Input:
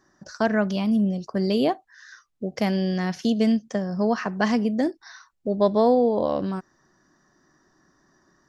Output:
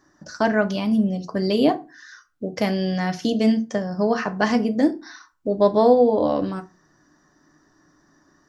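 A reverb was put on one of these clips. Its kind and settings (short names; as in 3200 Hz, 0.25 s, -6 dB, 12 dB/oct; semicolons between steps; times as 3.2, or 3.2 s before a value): FDN reverb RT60 0.3 s, low-frequency decay 1.4×, high-frequency decay 0.7×, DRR 6.5 dB; gain +2 dB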